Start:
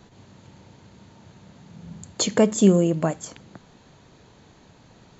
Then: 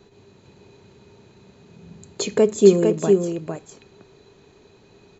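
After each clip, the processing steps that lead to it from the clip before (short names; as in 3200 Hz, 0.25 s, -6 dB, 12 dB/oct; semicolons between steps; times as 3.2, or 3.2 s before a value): small resonant body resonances 400/2500/4000 Hz, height 16 dB, ringing for 75 ms; on a send: echo 0.455 s -4.5 dB; on the sum: gain -4.5 dB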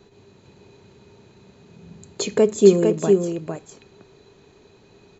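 nothing audible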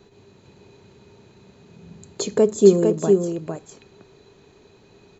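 dynamic EQ 2400 Hz, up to -8 dB, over -47 dBFS, Q 1.5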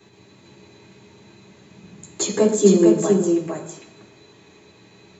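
reverb RT60 1.1 s, pre-delay 3 ms, DRR -4.5 dB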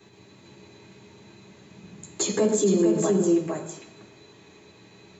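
limiter -11.5 dBFS, peak gain reduction 10 dB; gain -1.5 dB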